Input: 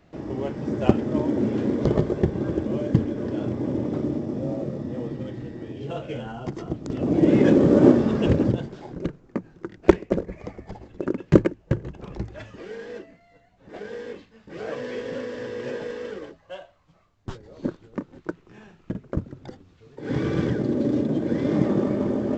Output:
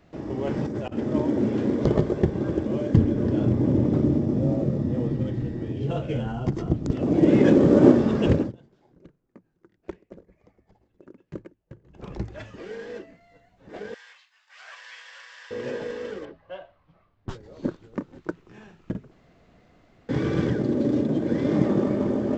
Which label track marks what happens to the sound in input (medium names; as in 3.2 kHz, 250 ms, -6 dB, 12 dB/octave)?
0.470000	0.980000	compressor with a negative ratio -31 dBFS
2.970000	6.920000	bass shelf 230 Hz +11 dB
8.360000	12.050000	dip -22 dB, fades 0.16 s
13.940000	15.510000	Bessel high-pass 1.5 kHz, order 8
16.250000	17.290000	Gaussian low-pass sigma 2.2 samples
19.110000	20.090000	room tone